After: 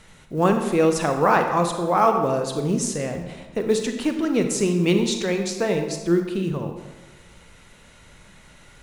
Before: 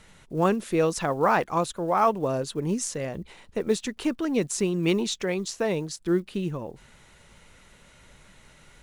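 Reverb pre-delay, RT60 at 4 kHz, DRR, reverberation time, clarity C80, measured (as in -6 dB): 31 ms, 0.80 s, 5.0 dB, 1.2 s, 8.0 dB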